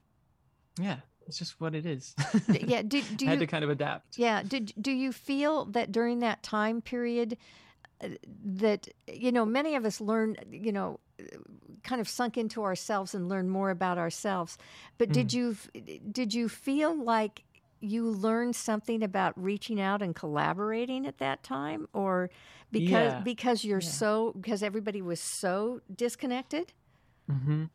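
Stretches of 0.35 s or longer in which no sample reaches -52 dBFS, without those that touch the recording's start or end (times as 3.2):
26.7–27.28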